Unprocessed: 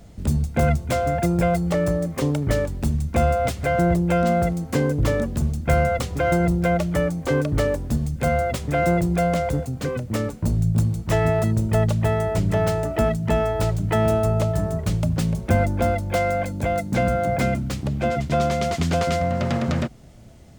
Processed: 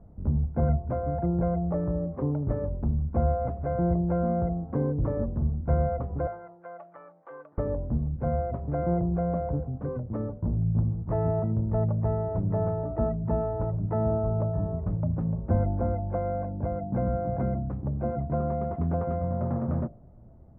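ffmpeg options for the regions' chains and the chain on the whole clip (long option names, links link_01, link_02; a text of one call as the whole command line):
ffmpeg -i in.wav -filter_complex "[0:a]asettb=1/sr,asplit=3[link_01][link_02][link_03];[link_01]atrim=end=6.274[link_04];[link_02]atrim=start=6.27:end=7.58,asetpts=PTS-STARTPTS,afade=type=in:duration=0.004:curve=qsin,afade=type=out:start_time=1.306:duration=0.004:curve=qsin,highpass=1300,aecho=1:1:6:0.38,atrim=end_sample=57771[link_05];[link_03]atrim=start=7.576[link_06];[link_04][link_05]acrossfade=duration=0.004:curve1=hsin:curve2=qsin[link_07];[link_07][link_06]acrossfade=duration=0.004:curve1=qsin:curve2=hsin,lowpass=frequency=1100:width=0.5412,lowpass=frequency=1100:width=1.3066,lowshelf=frequency=130:gain=5,bandreject=frequency=53.19:width_type=h:width=4,bandreject=frequency=106.38:width_type=h:width=4,bandreject=frequency=159.57:width_type=h:width=4,bandreject=frequency=212.76:width_type=h:width=4,bandreject=frequency=265.95:width_type=h:width=4,bandreject=frequency=319.14:width_type=h:width=4,bandreject=frequency=372.33:width_type=h:width=4,bandreject=frequency=425.52:width_type=h:width=4,bandreject=frequency=478.71:width_type=h:width=4,bandreject=frequency=531.9:width_type=h:width=4,bandreject=frequency=585.09:width_type=h:width=4,bandreject=frequency=638.28:width_type=h:width=4,bandreject=frequency=691.47:width_type=h:width=4,bandreject=frequency=744.66:width_type=h:width=4,bandreject=frequency=797.85:width_type=h:width=4,volume=-7dB" out.wav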